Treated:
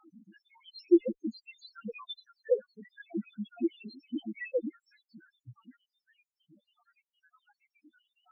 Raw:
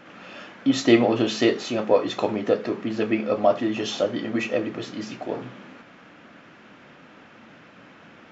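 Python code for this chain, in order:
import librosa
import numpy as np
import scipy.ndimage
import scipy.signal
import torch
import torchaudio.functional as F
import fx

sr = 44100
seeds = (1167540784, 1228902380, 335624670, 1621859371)

p1 = fx.spec_dropout(x, sr, seeds[0], share_pct=84)
p2 = fx.cheby_harmonics(p1, sr, harmonics=(2,), levels_db=(-26,), full_scale_db=-5.0)
p3 = 10.0 ** (-17.5 / 20.0) * np.tanh(p2 / 10.0 ** (-17.5 / 20.0))
p4 = p2 + (p3 * 10.0 ** (-9.5 / 20.0))
p5 = scipy.signal.sosfilt(scipy.signal.butter(2, 4200.0, 'lowpass', fs=sr, output='sos'), p4)
p6 = fx.spec_topn(p5, sr, count=2)
y = p6 * 10.0 ** (-2.0 / 20.0)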